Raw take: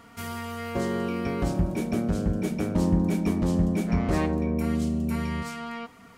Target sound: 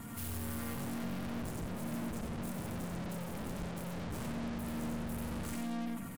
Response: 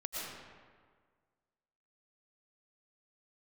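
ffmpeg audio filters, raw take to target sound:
-filter_complex "[0:a]aexciter=amount=5.8:drive=4.7:freq=7.8k,flanger=delay=8.1:depth=6.7:regen=36:speed=0.7:shape=sinusoidal,lowshelf=f=280:t=q:w=1.5:g=8.5,acontrast=66,bandreject=f=385.5:t=h:w=4,bandreject=f=771:t=h:w=4,bandreject=f=1.1565k:t=h:w=4,bandreject=f=1.542k:t=h:w=4,bandreject=f=1.9275k:t=h:w=4,bandreject=f=2.313k:t=h:w=4,bandreject=f=2.6985k:t=h:w=4,bandreject=f=3.084k:t=h:w=4,bandreject=f=3.4695k:t=h:w=4,bandreject=f=3.855k:t=h:w=4,asplit=2[a][b];[b]aecho=0:1:98:0.531[c];[a][c]amix=inputs=2:normalize=0,aeval=exprs='(tanh(89.1*val(0)+0.15)-tanh(0.15))/89.1':c=same,afftfilt=real='re*gte(hypot(re,im),0.000562)':imag='im*gte(hypot(re,im),0.000562)':win_size=1024:overlap=0.75,asplit=2[d][e];[e]aecho=0:1:90:0.398[f];[d][f]amix=inputs=2:normalize=0,asplit=4[g][h][i][j];[h]asetrate=33038,aresample=44100,atempo=1.33484,volume=-10dB[k];[i]asetrate=52444,aresample=44100,atempo=0.840896,volume=-18dB[l];[j]asetrate=58866,aresample=44100,atempo=0.749154,volume=-13dB[m];[g][k][l][m]amix=inputs=4:normalize=0,volume=-1.5dB"

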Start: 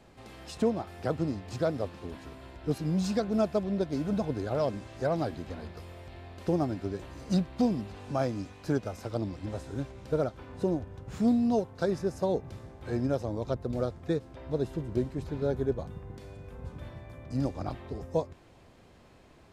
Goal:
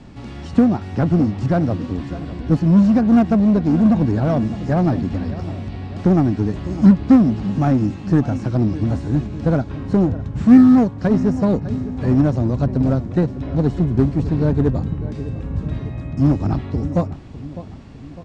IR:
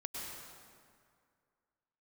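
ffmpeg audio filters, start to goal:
-filter_complex "[0:a]asetrate=47187,aresample=44100,lowpass=f=7.6k:w=0.5412,lowpass=f=7.6k:w=1.3066,lowshelf=f=340:t=q:w=1.5:g=8,asplit=2[a][b];[b]adelay=604,lowpass=f=2.1k:p=1,volume=-16dB,asplit=2[c][d];[d]adelay=604,lowpass=f=2.1k:p=1,volume=0.53,asplit=2[e][f];[f]adelay=604,lowpass=f=2.1k:p=1,volume=0.53,asplit=2[g][h];[h]adelay=604,lowpass=f=2.1k:p=1,volume=0.53,asplit=2[i][j];[j]adelay=604,lowpass=f=2.1k:p=1,volume=0.53[k];[c][e][g][i][k]amix=inputs=5:normalize=0[l];[a][l]amix=inputs=2:normalize=0,acrossover=split=2600[m][n];[n]acompressor=threshold=-56dB:ratio=4:attack=1:release=60[o];[m][o]amix=inputs=2:normalize=0,asplit=2[p][q];[q]aeval=exprs='0.0631*(abs(mod(val(0)/0.0631+3,4)-2)-1)':c=same,volume=-9.5dB[r];[p][r]amix=inputs=2:normalize=0,volume=7dB"

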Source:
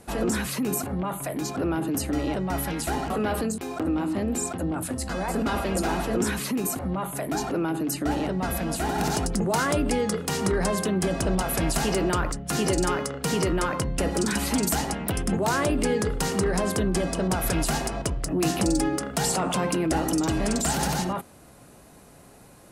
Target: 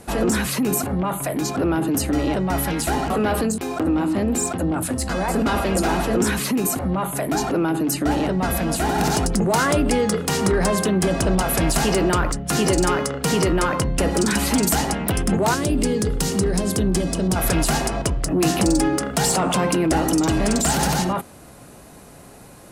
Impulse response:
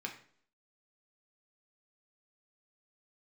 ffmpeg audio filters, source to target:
-filter_complex "[0:a]asettb=1/sr,asplit=3[a][b][c];[a]atrim=end=15.544[d];[b]atrim=start=15.54:end=17.36,asetpts=PTS-STARTPTS,afade=t=in:d=0.004:c=qsin,afade=t=out:st=1.816:d=0.004:c=qsin,acrossover=split=440|3000[e][f][g];[f]acompressor=threshold=-39dB:ratio=6[h];[e][h][g]amix=inputs=3:normalize=0[i];[c]atrim=start=17.356[j];[d][i]acrossfade=d=0.004:c1=hsin:c2=qsin[k];[k][j]acrossfade=d=0.004:c1=qsin:c2=hsin,asplit=2[l][m];[m]asoftclip=type=tanh:threshold=-25dB,volume=-5.5dB[n];[l][n]amix=inputs=2:normalize=0,volume=3dB"

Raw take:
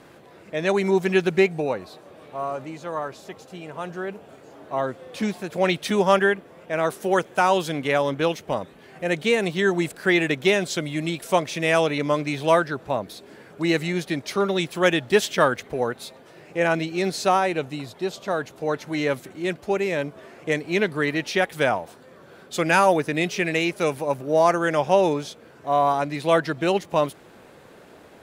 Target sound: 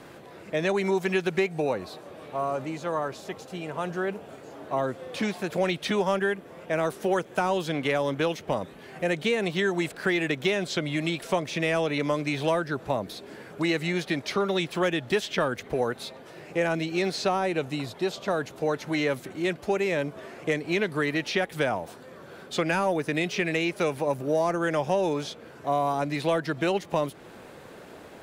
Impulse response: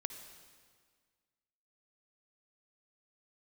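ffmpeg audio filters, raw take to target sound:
-filter_complex "[0:a]asplit=2[a][b];[b]asoftclip=type=tanh:threshold=-14dB,volume=-10dB[c];[a][c]amix=inputs=2:normalize=0,acrossover=split=460|5200[d][e][f];[d]acompressor=threshold=-28dB:ratio=4[g];[e]acompressor=threshold=-27dB:ratio=4[h];[f]acompressor=threshold=-49dB:ratio=4[i];[g][h][i]amix=inputs=3:normalize=0"

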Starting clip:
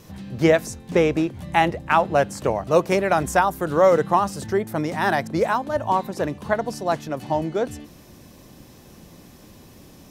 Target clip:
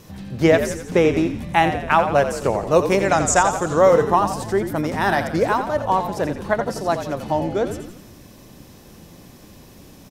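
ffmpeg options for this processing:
-filter_complex "[0:a]asettb=1/sr,asplit=3[a][b][c];[a]atrim=end=2.994[d];[b]atrim=start=2.99:end=3.79,asetpts=PTS-STARTPTS,afade=t=in:d=0.004:c=qsin,afade=t=out:st=0.796:d=0.004:c=qsin,lowpass=f=7.2k:t=q:w=5.6[e];[c]atrim=start=3.786[f];[d][e]acrossfade=d=0.004:c1=hsin:c2=qsin[g];[g][f]acrossfade=d=0.004:c1=qsin:c2=hsin,asplit=7[h][i][j][k][l][m][n];[i]adelay=86,afreqshift=-50,volume=-9dB[o];[j]adelay=172,afreqshift=-100,volume=-14.4dB[p];[k]adelay=258,afreqshift=-150,volume=-19.7dB[q];[l]adelay=344,afreqshift=-200,volume=-25.1dB[r];[m]adelay=430,afreqshift=-250,volume=-30.4dB[s];[n]adelay=516,afreqshift=-300,volume=-35.8dB[t];[h][o][p][q][r][s][t]amix=inputs=7:normalize=0,volume=1.5dB"

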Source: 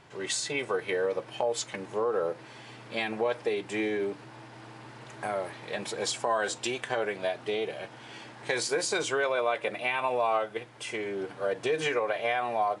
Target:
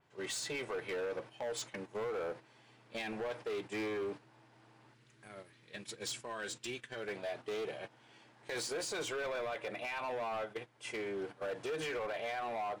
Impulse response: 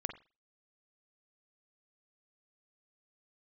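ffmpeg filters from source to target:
-filter_complex "[0:a]asplit=3[a][b][c];[a]afade=t=out:st=4.93:d=0.02[d];[b]equalizer=f=770:t=o:w=1.4:g=-14.5,afade=t=in:st=4.93:d=0.02,afade=t=out:st=7.07:d=0.02[e];[c]afade=t=in:st=7.07:d=0.02[f];[d][e][f]amix=inputs=3:normalize=0,agate=range=-11dB:threshold=-38dB:ratio=16:detection=peak,alimiter=limit=-21.5dB:level=0:latency=1:release=27,volume=29.5dB,asoftclip=hard,volume=-29.5dB,adynamicequalizer=threshold=0.00501:dfrequency=4000:dqfactor=0.7:tfrequency=4000:tqfactor=0.7:attack=5:release=100:ratio=0.375:range=2:mode=cutabove:tftype=highshelf,volume=-5dB"

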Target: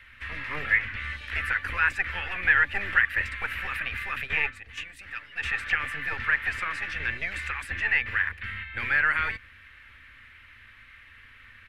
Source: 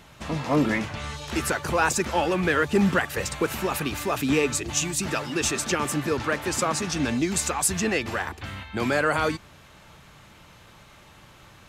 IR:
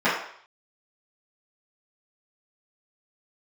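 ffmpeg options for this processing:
-filter_complex "[0:a]asplit=3[a][b][c];[a]afade=t=out:st=4.25:d=0.02[d];[b]agate=range=-11dB:threshold=-23dB:ratio=16:detection=peak,afade=t=in:st=4.25:d=0.02,afade=t=out:st=5.42:d=0.02[e];[c]afade=t=in:st=5.42:d=0.02[f];[d][e][f]amix=inputs=3:normalize=0,firequalizer=gain_entry='entry(110,0);entry(220,-24);entry(420,-6);entry(690,-24);entry(990,-10);entry(1800,11);entry(3600,-6);entry(6600,-20);entry(9800,-11);entry(15000,-15)':delay=0.05:min_phase=1,acrossover=split=110|590|3800[g][h][i][j];[h]aeval=exprs='abs(val(0))':c=same[k];[j]acompressor=threshold=-49dB:ratio=6[l];[g][k][i][l]amix=inputs=4:normalize=0,volume=-1dB"

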